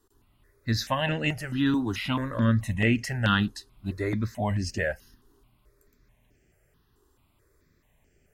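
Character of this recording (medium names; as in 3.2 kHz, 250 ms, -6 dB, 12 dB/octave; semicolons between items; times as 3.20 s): notches that jump at a steady rate 4.6 Hz 610–3800 Hz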